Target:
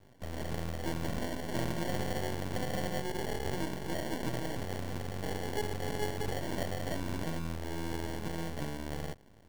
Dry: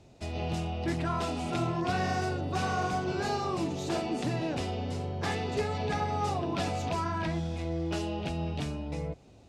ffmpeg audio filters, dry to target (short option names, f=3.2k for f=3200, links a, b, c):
-af "acrusher=samples=35:mix=1:aa=0.000001,aeval=exprs='max(val(0),0)':c=same"